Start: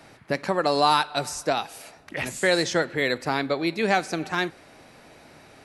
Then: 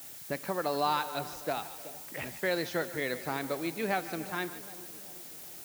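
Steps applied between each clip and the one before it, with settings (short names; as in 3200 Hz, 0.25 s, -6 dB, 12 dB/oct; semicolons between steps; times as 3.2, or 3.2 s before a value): air absorption 130 m; split-band echo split 720 Hz, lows 0.378 s, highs 0.149 s, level -14 dB; added noise blue -38 dBFS; gain -8.5 dB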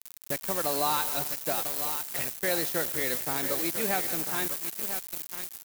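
echo 0.998 s -10 dB; requantised 6-bit, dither none; high shelf 6700 Hz +11.5 dB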